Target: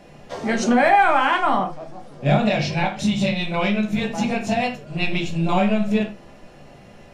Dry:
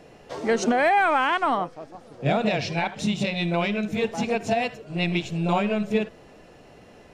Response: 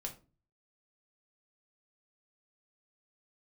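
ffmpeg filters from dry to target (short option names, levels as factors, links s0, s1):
-filter_complex "[0:a]equalizer=f=440:t=o:w=0.24:g=-9[s0];[1:a]atrim=start_sample=2205,afade=t=out:st=0.16:d=0.01,atrim=end_sample=7497[s1];[s0][s1]afir=irnorm=-1:irlink=0,volume=1.88"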